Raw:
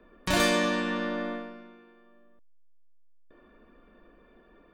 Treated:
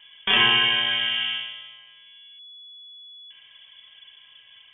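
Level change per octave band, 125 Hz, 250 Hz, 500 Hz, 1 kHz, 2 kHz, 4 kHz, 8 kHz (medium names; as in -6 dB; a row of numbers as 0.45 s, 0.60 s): -3.5 dB, -9.5 dB, -9.0 dB, +2.5 dB, +8.5 dB, +15.5 dB, under -40 dB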